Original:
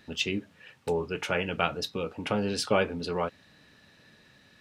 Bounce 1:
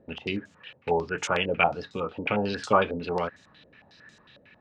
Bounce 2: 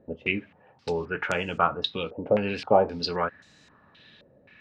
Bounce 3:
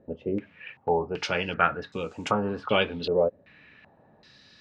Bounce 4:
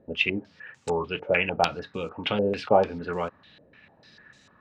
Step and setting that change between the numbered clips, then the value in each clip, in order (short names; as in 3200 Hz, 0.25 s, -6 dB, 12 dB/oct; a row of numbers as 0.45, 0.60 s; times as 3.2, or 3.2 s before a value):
stepped low-pass, rate: 11, 3.8, 2.6, 6.7 Hz